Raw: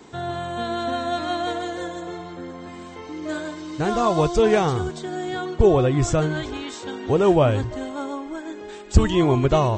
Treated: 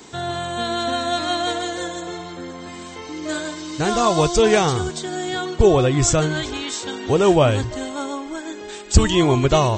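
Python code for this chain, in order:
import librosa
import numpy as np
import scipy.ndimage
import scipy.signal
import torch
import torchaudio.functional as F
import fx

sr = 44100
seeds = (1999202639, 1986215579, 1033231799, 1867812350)

y = fx.high_shelf(x, sr, hz=2900.0, db=11.5)
y = F.gain(torch.from_numpy(y), 1.5).numpy()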